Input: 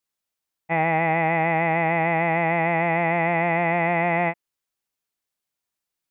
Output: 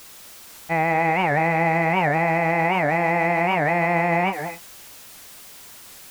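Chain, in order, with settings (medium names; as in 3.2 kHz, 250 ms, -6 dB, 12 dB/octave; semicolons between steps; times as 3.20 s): jump at every zero crossing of -37 dBFS; gated-style reverb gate 270 ms rising, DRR 8 dB; warped record 78 rpm, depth 250 cents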